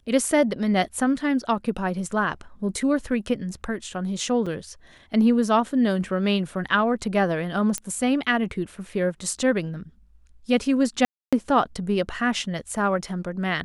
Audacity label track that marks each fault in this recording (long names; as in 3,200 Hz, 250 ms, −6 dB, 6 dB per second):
4.460000	4.470000	drop-out 5.3 ms
7.780000	7.780000	click −11 dBFS
11.050000	11.330000	drop-out 276 ms